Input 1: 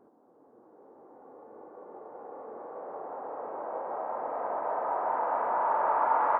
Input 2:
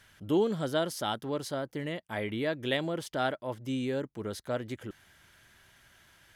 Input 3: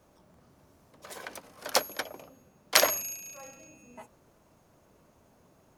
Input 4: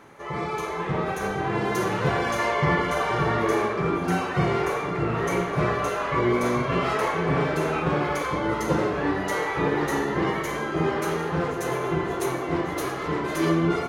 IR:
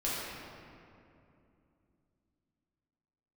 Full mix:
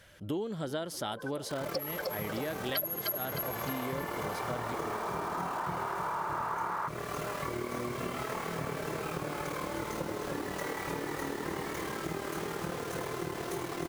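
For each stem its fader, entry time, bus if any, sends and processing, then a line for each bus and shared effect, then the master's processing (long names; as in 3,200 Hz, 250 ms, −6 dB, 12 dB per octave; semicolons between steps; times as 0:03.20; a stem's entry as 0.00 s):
−3.0 dB, 0.50 s, no send, no echo send, flat-topped bell 2,200 Hz +11.5 dB 2.4 octaves
+1.0 dB, 0.00 s, no send, echo send −23 dB, no processing
+2.5 dB, 0.00 s, no send, echo send −5 dB, expanding power law on the bin magnitudes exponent 3.7; parametric band 13,000 Hz +13.5 dB 0.97 octaves; phaser with its sweep stopped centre 1,300 Hz, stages 8
−5.5 dB, 1.30 s, no send, echo send −7 dB, amplitude modulation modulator 38 Hz, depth 65%; bit-depth reduction 6 bits, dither none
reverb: not used
echo: repeating echo 306 ms, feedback 39%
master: downward compressor 6 to 1, threshold −32 dBFS, peak gain reduction 19 dB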